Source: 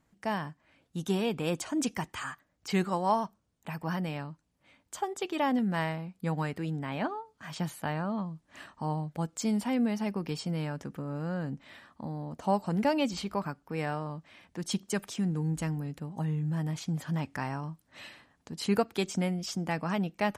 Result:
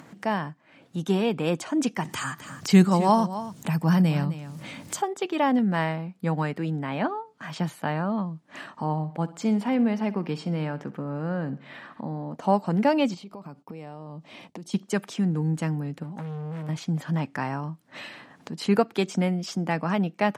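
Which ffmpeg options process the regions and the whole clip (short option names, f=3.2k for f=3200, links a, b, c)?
-filter_complex "[0:a]asettb=1/sr,asplit=3[a][b][c];[a]atrim=end=2.054[d];[b]atrim=start=2.05:end=5.02,asetpts=PTS-STARTPTS,afade=t=in:d=0.004:c=qsin,afade=t=out:st=2.966:d=0.004:c=qsin,bass=f=250:g=11,treble=f=4k:g=12,acompressor=mode=upward:threshold=-31dB:ratio=2.5:attack=3.2:release=140:knee=2.83:detection=peak,aecho=1:1:259:0.224,atrim=end_sample=130977[e];[c]atrim=start=5.016[f];[d][e]acrossfade=d=0.004:c1=hsin:c2=qsin[g];[g][f]acrossfade=d=0.004:c1=qsin:c2=hsin,asettb=1/sr,asplit=3[h][i][j];[h]atrim=end=8.844[k];[i]atrim=start=8.84:end=12.36,asetpts=PTS-STARTPTS,afade=t=in:d=0.004:c=qsin,afade=t=out:st=3.516:d=0.004:c=qsin,bass=f=250:g=-1,treble=f=4k:g=-6,aecho=1:1:64|128|192|256:0.133|0.068|0.0347|0.0177,atrim=end_sample=155232[l];[j]atrim=start=12.356[m];[k][l]acrossfade=d=0.004:c1=hsin:c2=qsin[n];[n][m]acrossfade=d=0.004:c1=qsin:c2=hsin,asettb=1/sr,asplit=3[o][p][q];[o]atrim=end=13.144[r];[p]atrim=start=13.14:end=14.74,asetpts=PTS-STARTPTS,afade=t=in:d=0.004:c=qsin,afade=t=out:st=1.596:d=0.004:c=qsin,agate=range=-33dB:threshold=-58dB:ratio=3:release=100:detection=peak,equalizer=f=1.6k:t=o:w=0.79:g=-12,acompressor=threshold=-45dB:ratio=5:attack=3.2:release=140:knee=1:detection=peak[s];[q]atrim=start=14.736[t];[r][s]acrossfade=d=0.004:c1=hsin:c2=qsin[u];[u][t]acrossfade=d=0.004:c1=qsin:c2=hsin,asettb=1/sr,asplit=3[v][w][x];[v]atrim=end=16.034[y];[w]atrim=start=16.03:end=16.69,asetpts=PTS-STARTPTS,afade=t=in:d=0.004:c=qsin,afade=t=out:st=0.656:d=0.004:c=qsin,highpass=68,asoftclip=type=hard:threshold=-37.5dB[z];[x]atrim=start=16.686[aa];[y][z]acrossfade=d=0.004:c1=hsin:c2=qsin[ab];[ab][aa]acrossfade=d=0.004:c1=qsin:c2=hsin,highpass=f=130:w=0.5412,highpass=f=130:w=1.3066,aemphasis=mode=reproduction:type=cd,acompressor=mode=upward:threshold=-39dB:ratio=2.5,volume=5.5dB"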